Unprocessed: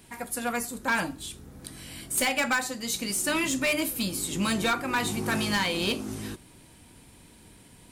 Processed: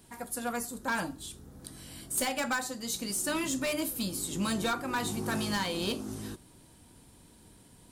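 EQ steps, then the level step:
parametric band 2,300 Hz −7 dB 0.77 octaves
−3.5 dB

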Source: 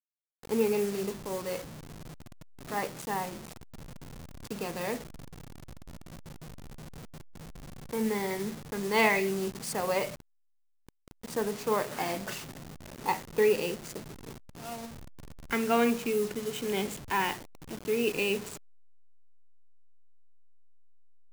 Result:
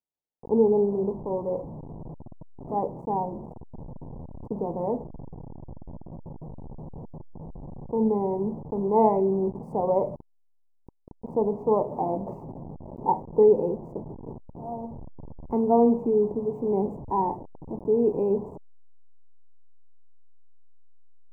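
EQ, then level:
elliptic low-pass filter 940 Hz, stop band 40 dB
+7.0 dB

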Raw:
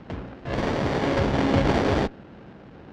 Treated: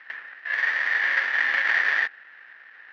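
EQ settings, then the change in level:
high-pass with resonance 1,800 Hz, resonance Q 11
Butterworth low-pass 6,400 Hz 36 dB per octave
high-shelf EQ 4,000 Hz −8.5 dB
0.0 dB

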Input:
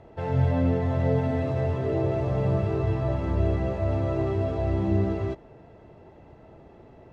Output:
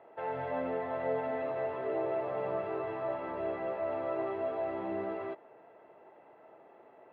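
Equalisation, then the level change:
band-pass filter 580–2,600 Hz
high-frequency loss of the air 190 metres
0.0 dB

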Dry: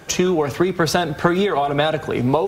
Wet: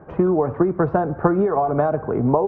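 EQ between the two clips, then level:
low-pass filter 1,200 Hz 24 dB per octave
0.0 dB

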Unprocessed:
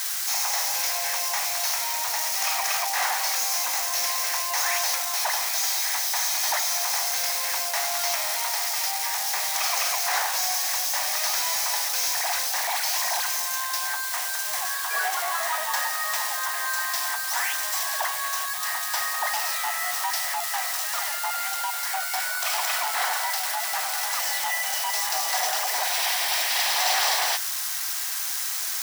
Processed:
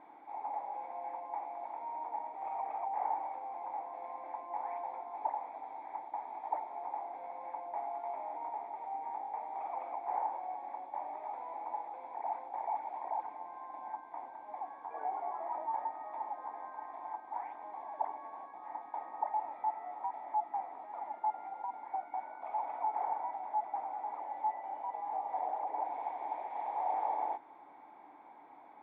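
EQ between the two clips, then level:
formant resonators in series u
low-shelf EQ 78 Hz −9.5 dB
+10.5 dB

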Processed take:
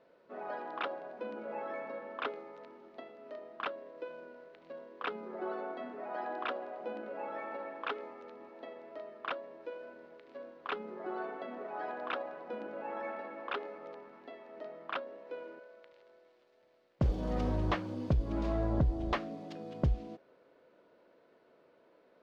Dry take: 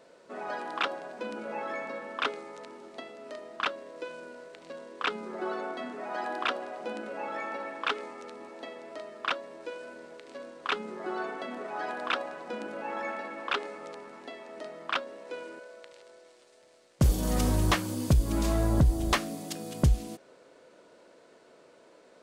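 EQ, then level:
dynamic equaliser 570 Hz, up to +5 dB, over −46 dBFS, Q 0.91
high-frequency loss of the air 250 metres
−7.0 dB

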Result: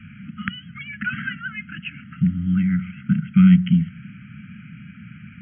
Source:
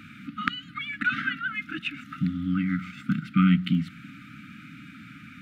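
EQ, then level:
elliptic band-stop filter 210–1,500 Hz, stop band 40 dB
linear-phase brick-wall low-pass 3,300 Hz
low-shelf EQ 300 Hz +11.5 dB
0.0 dB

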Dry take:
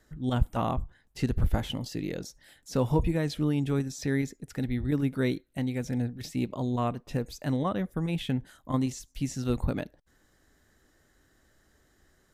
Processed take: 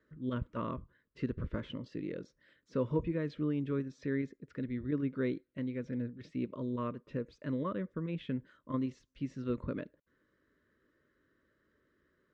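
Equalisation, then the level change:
high-pass filter 360 Hz 6 dB per octave
Butterworth band-reject 770 Hz, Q 1.8
head-to-tape spacing loss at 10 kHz 41 dB
0.0 dB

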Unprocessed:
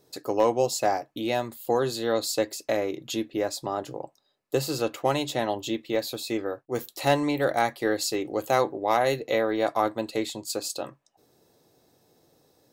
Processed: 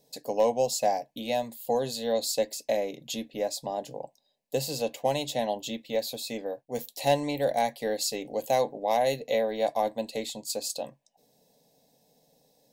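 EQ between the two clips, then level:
phaser with its sweep stopped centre 350 Hz, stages 6
0.0 dB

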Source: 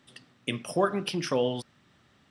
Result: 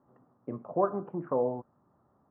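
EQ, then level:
Butterworth low-pass 1,100 Hz 36 dB per octave
low-shelf EQ 420 Hz −9.5 dB
+2.5 dB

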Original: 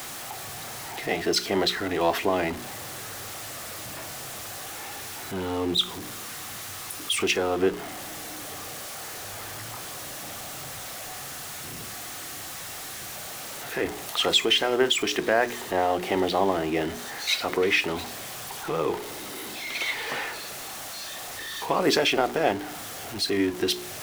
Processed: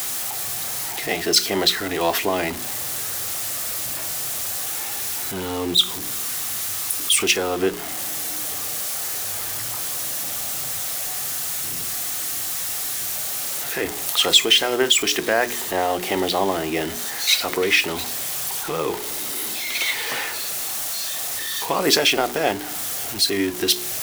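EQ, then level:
high-shelf EQ 2,900 Hz +8 dB
high-shelf EQ 8,700 Hz +6 dB
+1.5 dB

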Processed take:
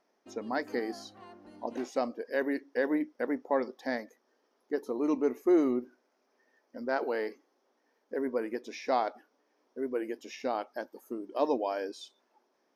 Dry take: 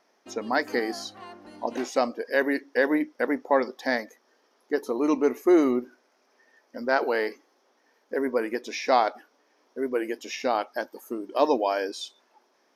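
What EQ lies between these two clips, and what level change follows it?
tilt shelving filter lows +3.5 dB, about 750 Hz
−7.5 dB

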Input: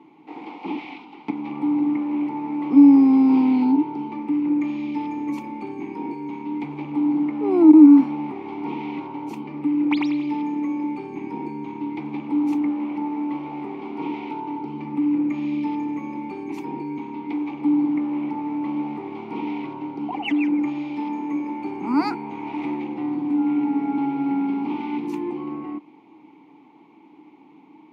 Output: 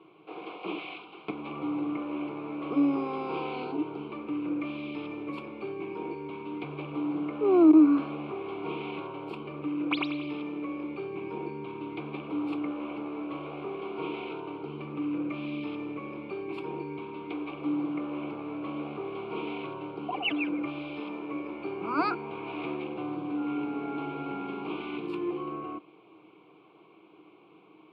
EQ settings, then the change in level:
high-frequency loss of the air 83 metres
bass and treble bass −4 dB, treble −4 dB
phaser with its sweep stopped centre 1,300 Hz, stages 8
+4.5 dB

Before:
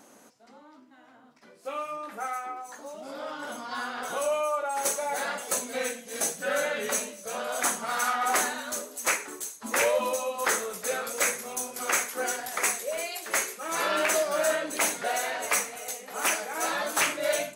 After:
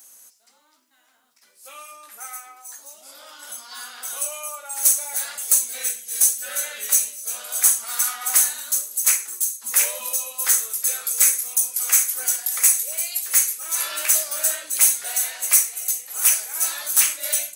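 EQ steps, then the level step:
first-order pre-emphasis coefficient 0.97
high-shelf EQ 8,600 Hz +7.5 dB
+8.0 dB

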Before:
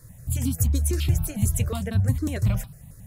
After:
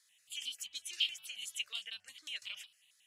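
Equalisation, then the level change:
four-pole ladder band-pass 3,200 Hz, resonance 75%
+7.0 dB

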